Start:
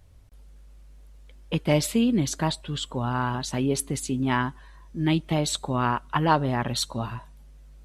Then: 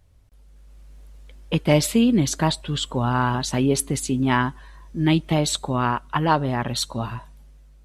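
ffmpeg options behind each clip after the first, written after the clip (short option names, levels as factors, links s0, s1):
-af "dynaudnorm=f=160:g=9:m=2.82,volume=0.708"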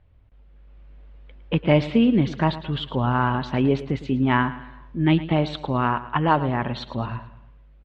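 -af "lowpass=f=3100:w=0.5412,lowpass=f=3100:w=1.3066,aecho=1:1:109|218|327|436:0.178|0.0782|0.0344|0.0151"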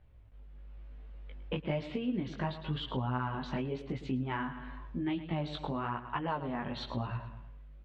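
-af "acompressor=threshold=0.0316:ratio=4,flanger=delay=15.5:depth=5.2:speed=0.98"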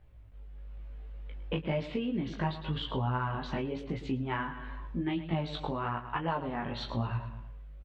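-filter_complex "[0:a]asplit=2[s0][s1];[s1]adelay=18,volume=0.473[s2];[s0][s2]amix=inputs=2:normalize=0,volume=1.19"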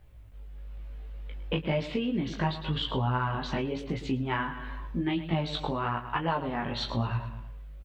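-af "highshelf=f=4500:g=9,volume=1.41"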